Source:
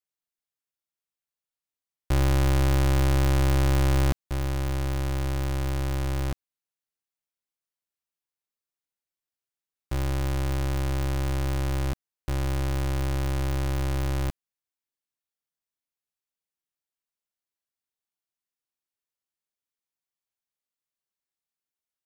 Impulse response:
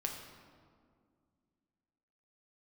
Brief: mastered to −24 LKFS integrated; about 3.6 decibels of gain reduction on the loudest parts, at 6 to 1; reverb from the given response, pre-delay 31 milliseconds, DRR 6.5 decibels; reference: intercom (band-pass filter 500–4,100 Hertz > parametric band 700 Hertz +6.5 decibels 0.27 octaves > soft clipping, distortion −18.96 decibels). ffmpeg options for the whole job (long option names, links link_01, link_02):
-filter_complex "[0:a]acompressor=threshold=-25dB:ratio=6,asplit=2[link_01][link_02];[1:a]atrim=start_sample=2205,adelay=31[link_03];[link_02][link_03]afir=irnorm=-1:irlink=0,volume=-7.5dB[link_04];[link_01][link_04]amix=inputs=2:normalize=0,highpass=500,lowpass=4100,equalizer=frequency=700:width_type=o:width=0.27:gain=6.5,asoftclip=threshold=-23dB,volume=13.5dB"